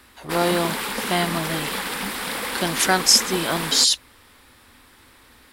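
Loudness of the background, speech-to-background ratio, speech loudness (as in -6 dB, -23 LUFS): -27.0 LUFS, 6.5 dB, -20.5 LUFS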